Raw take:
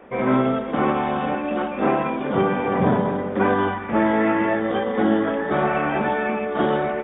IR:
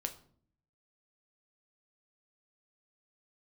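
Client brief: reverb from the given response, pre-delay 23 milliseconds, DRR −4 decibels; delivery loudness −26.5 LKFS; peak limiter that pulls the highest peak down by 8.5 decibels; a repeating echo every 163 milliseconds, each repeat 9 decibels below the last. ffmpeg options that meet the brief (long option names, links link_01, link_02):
-filter_complex "[0:a]alimiter=limit=-14.5dB:level=0:latency=1,aecho=1:1:163|326|489|652:0.355|0.124|0.0435|0.0152,asplit=2[link_01][link_02];[1:a]atrim=start_sample=2205,adelay=23[link_03];[link_02][link_03]afir=irnorm=-1:irlink=0,volume=4dB[link_04];[link_01][link_04]amix=inputs=2:normalize=0,volume=-9dB"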